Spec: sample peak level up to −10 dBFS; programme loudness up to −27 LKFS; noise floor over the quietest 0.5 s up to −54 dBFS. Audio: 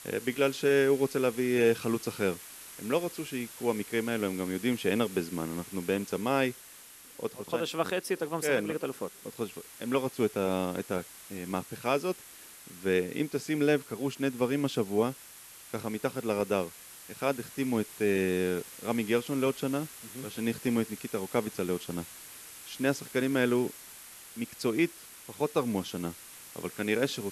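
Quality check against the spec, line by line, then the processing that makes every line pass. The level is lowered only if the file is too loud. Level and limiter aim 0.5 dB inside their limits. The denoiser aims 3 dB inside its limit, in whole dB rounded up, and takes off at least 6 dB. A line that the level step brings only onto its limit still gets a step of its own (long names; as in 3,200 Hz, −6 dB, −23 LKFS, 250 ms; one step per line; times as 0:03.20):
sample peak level −13.5 dBFS: in spec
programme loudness −31.0 LKFS: in spec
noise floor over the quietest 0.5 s −51 dBFS: out of spec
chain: broadband denoise 6 dB, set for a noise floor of −51 dBFS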